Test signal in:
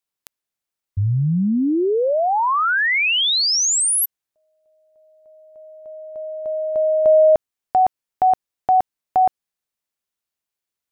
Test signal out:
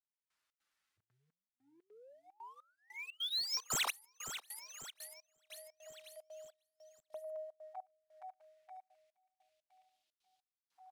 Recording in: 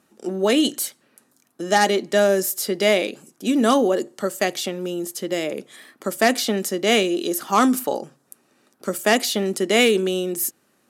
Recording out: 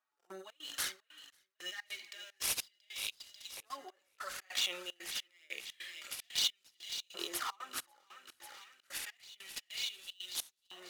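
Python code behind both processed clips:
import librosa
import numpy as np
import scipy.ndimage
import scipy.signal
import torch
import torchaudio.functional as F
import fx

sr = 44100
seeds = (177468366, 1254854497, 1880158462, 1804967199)

p1 = scipy.ndimage.median_filter(x, 5, mode='constant')
p2 = fx.over_compress(p1, sr, threshold_db=-29.0, ratio=-1.0)
p3 = fx.env_flanger(p2, sr, rest_ms=8.4, full_db=-20.5)
p4 = fx.hpss(p3, sr, part='percussive', gain_db=-11)
p5 = fx.comb_fb(p4, sr, f0_hz=280.0, decay_s=0.55, harmonics='odd', damping=0.3, mix_pct=50)
p6 = p5 + fx.echo_feedback(p5, sr, ms=542, feedback_pct=54, wet_db=-10, dry=0)
p7 = fx.step_gate(p6, sr, bpm=150, pattern='...xx.xxxx.xx', floor_db=-24.0, edge_ms=4.5)
p8 = fx.filter_lfo_highpass(p7, sr, shape='saw_up', hz=0.28, low_hz=990.0, high_hz=4000.0, q=1.8)
p9 = fx.high_shelf(p8, sr, hz=4400.0, db=6.5)
p10 = np.interp(np.arange(len(p9)), np.arange(len(p9))[::2], p9[::2])
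y = p10 * librosa.db_to_amplitude(4.5)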